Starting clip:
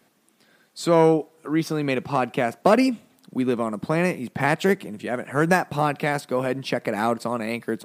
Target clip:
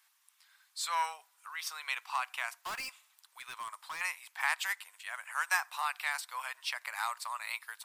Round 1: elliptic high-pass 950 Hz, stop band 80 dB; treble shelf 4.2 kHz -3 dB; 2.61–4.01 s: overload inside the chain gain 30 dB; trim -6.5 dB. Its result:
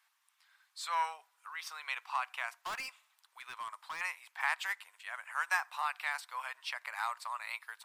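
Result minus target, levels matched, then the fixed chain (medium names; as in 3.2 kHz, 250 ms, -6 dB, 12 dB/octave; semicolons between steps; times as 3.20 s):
8 kHz band -6.0 dB
elliptic high-pass 950 Hz, stop band 80 dB; treble shelf 4.2 kHz +7 dB; 2.61–4.01 s: overload inside the chain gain 30 dB; trim -6.5 dB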